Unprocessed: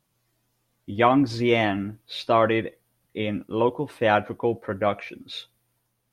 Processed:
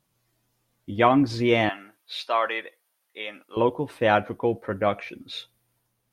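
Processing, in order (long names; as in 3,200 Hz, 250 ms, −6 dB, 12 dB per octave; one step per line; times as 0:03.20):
0:01.69–0:03.57: high-pass filter 820 Hz 12 dB per octave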